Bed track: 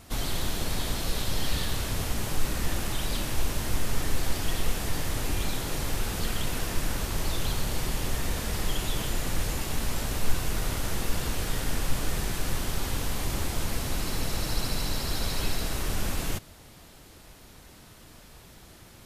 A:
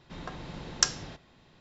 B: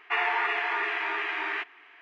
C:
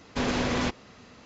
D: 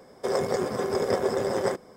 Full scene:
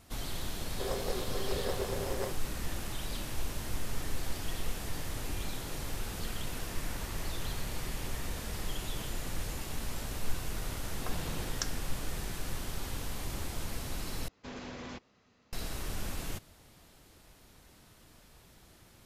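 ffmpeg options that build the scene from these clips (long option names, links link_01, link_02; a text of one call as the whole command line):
ffmpeg -i bed.wav -i cue0.wav -i cue1.wav -i cue2.wav -i cue3.wav -filter_complex "[0:a]volume=-8dB[link_01];[4:a]bandreject=frequency=210:width=12[link_02];[2:a]acompressor=threshold=-34dB:ratio=6:attack=3.2:release=140:knee=1:detection=peak[link_03];[1:a]dynaudnorm=framelen=160:gausssize=3:maxgain=16.5dB[link_04];[link_01]asplit=2[link_05][link_06];[link_05]atrim=end=14.284[link_07];[3:a]atrim=end=1.25,asetpts=PTS-STARTPTS,volume=-16.5dB[link_08];[link_06]atrim=start=15.526[link_09];[link_02]atrim=end=1.96,asetpts=PTS-STARTPTS,volume=-11dB,afade=type=in:duration=0.004:curve=hsin,afade=type=out:start_time=1.956:duration=0.004:curve=hsin,adelay=560[link_10];[link_03]atrim=end=2.01,asetpts=PTS-STARTPTS,volume=-16dB,afade=type=in:duration=0.004:curve=hsin,afade=type=out:start_time=2.006:duration=0.004:curve=hsin,adelay=6650[link_11];[link_04]atrim=end=1.6,asetpts=PTS-STARTPTS,volume=-16.5dB,afade=type=in:duration=0.004:curve=hsin,afade=type=out:start_time=1.596:duration=0.004:curve=hsin,adelay=10790[link_12];[link_07][link_08]acrossfade=duration=0.004:curve1=hsin:curve2=hsin[link_13];[link_13][link_09]acrossfade=duration=0.004:curve1=hsin:curve2=hsin[link_14];[link_14][link_10][link_11][link_12]amix=inputs=4:normalize=0" out.wav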